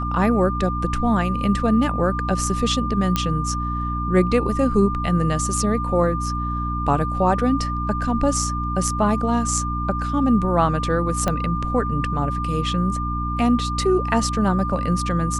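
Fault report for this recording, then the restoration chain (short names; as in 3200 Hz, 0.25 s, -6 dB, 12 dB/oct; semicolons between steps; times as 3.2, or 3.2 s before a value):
hum 60 Hz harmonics 5 -26 dBFS
tone 1200 Hz -26 dBFS
3.16 pop -6 dBFS
11.28 pop -8 dBFS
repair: de-click; notch 1200 Hz, Q 30; de-hum 60 Hz, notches 5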